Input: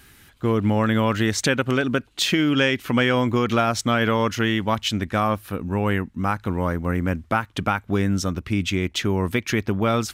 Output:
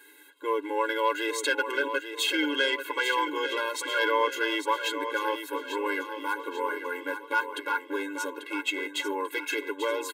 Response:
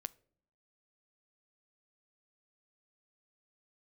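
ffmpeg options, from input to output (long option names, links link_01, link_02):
-filter_complex "[0:a]equalizer=frequency=5400:width=3.4:gain=-14.5,aecho=1:1:6.9:0.52,acrossover=split=590[link_01][link_02];[link_01]alimiter=limit=-24dB:level=0:latency=1:release=384[link_03];[link_02]aeval=exprs='0.447*(cos(1*acos(clip(val(0)/0.447,-1,1)))-cos(1*PI/2))+0.0251*(cos(4*acos(clip(val(0)/0.447,-1,1)))-cos(4*PI/2))':channel_layout=same[link_04];[link_03][link_04]amix=inputs=2:normalize=0,asoftclip=type=tanh:threshold=-11dB,asplit=2[link_05][link_06];[link_06]aecho=0:1:841|1682|2523|3364|4205:0.355|0.163|0.0751|0.0345|0.0159[link_07];[link_05][link_07]amix=inputs=2:normalize=0,afftfilt=real='re*eq(mod(floor(b*sr/1024/280),2),1)':imag='im*eq(mod(floor(b*sr/1024/280),2),1)':win_size=1024:overlap=0.75"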